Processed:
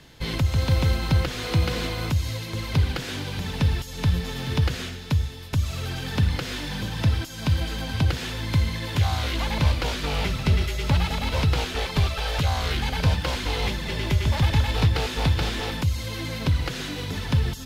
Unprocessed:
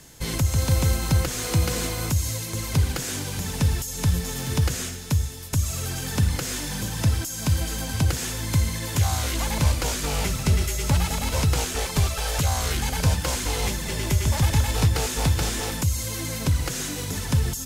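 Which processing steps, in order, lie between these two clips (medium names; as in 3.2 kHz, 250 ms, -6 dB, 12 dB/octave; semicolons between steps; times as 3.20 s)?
resonant high shelf 5.3 kHz -11.5 dB, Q 1.5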